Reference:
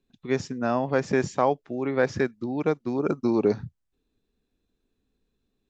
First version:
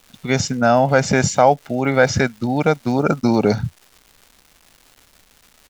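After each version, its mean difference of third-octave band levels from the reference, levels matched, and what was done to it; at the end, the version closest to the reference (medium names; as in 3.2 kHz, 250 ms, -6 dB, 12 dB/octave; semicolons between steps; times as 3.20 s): 5.0 dB: comb 1.4 ms, depth 59%; in parallel at +1 dB: peak limiter -18 dBFS, peak gain reduction 9 dB; on the sum: treble shelf 4.4 kHz +8 dB; crackle 450 per s -41 dBFS; trim +4.5 dB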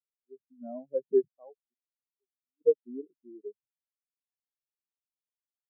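18.5 dB: high-pass 100 Hz 6 dB/octave; in parallel at -6 dB: one-sided clip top -21 dBFS, bottom -12.5 dBFS; on the sum: random-step tremolo 2.3 Hz, depth 95%; spectral contrast expander 4:1; trim -4.5 dB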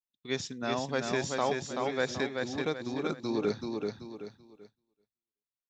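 7.5 dB: peaking EQ 3.6 kHz +10.5 dB 0.36 oct; on a send: feedback delay 382 ms, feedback 37%, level -4 dB; on the sum: expander -38 dBFS; treble shelf 2.2 kHz +11 dB; trim -9 dB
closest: first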